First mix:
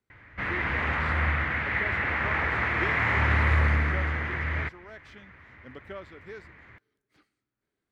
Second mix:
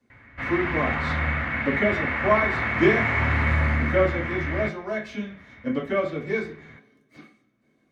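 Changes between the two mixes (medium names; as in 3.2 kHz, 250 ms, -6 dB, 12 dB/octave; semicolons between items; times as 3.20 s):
speech +9.5 dB; reverb: on, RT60 0.45 s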